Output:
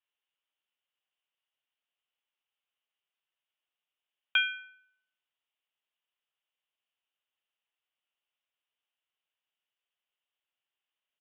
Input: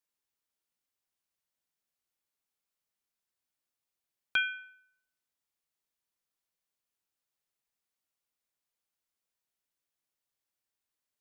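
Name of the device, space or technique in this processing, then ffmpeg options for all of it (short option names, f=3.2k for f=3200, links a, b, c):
musical greeting card: -af "aresample=8000,aresample=44100,highpass=530,equalizer=f=2.9k:t=o:w=0.34:g=10.5"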